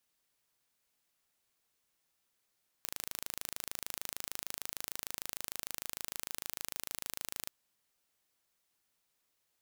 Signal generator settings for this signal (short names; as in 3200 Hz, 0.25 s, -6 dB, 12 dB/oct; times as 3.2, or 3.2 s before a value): pulse train 26.6/s, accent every 0, -11 dBFS 4.63 s